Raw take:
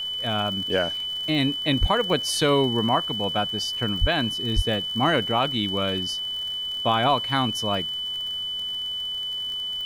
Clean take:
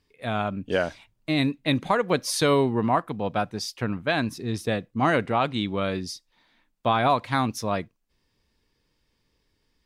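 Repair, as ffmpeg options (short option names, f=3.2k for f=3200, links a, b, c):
-filter_complex "[0:a]adeclick=t=4,bandreject=f=3k:w=30,asplit=3[a][b][c];[a]afade=t=out:st=1.8:d=0.02[d];[b]highpass=f=140:w=0.5412,highpass=f=140:w=1.3066,afade=t=in:st=1.8:d=0.02,afade=t=out:st=1.92:d=0.02[e];[c]afade=t=in:st=1.92:d=0.02[f];[d][e][f]amix=inputs=3:normalize=0,asplit=3[g][h][i];[g]afade=t=out:st=4:d=0.02[j];[h]highpass=f=140:w=0.5412,highpass=f=140:w=1.3066,afade=t=in:st=4:d=0.02,afade=t=out:st=4.12:d=0.02[k];[i]afade=t=in:st=4.12:d=0.02[l];[j][k][l]amix=inputs=3:normalize=0,asplit=3[m][n][o];[m]afade=t=out:st=4.55:d=0.02[p];[n]highpass=f=140:w=0.5412,highpass=f=140:w=1.3066,afade=t=in:st=4.55:d=0.02,afade=t=out:st=4.67:d=0.02[q];[o]afade=t=in:st=4.67:d=0.02[r];[p][q][r]amix=inputs=3:normalize=0,agate=range=-21dB:threshold=-22dB"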